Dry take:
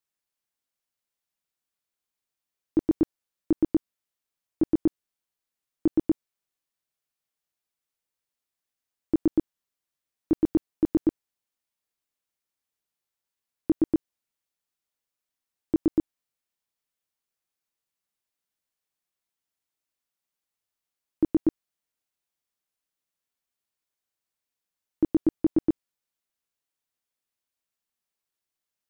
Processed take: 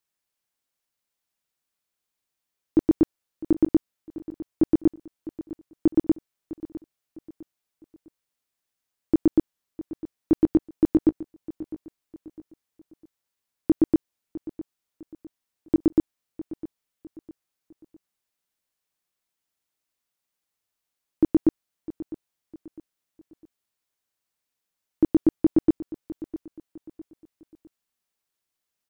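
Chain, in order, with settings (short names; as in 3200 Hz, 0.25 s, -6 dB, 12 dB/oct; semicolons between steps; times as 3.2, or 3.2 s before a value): feedback echo 0.655 s, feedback 38%, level -16.5 dB; gain +3.5 dB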